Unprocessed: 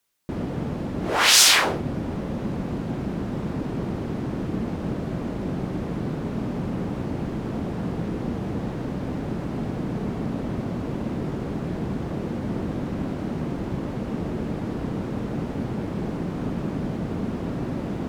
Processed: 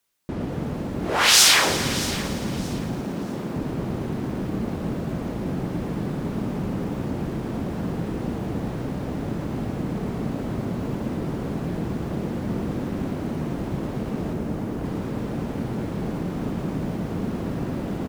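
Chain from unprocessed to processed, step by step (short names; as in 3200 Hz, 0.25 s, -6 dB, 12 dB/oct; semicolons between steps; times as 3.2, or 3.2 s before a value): 3.01–3.56 HPF 160 Hz 12 dB/oct; 14.33–14.84 high shelf 3800 Hz -12 dB; feedback echo 0.627 s, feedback 27%, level -16.5 dB; lo-fi delay 0.113 s, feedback 80%, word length 7-bit, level -13 dB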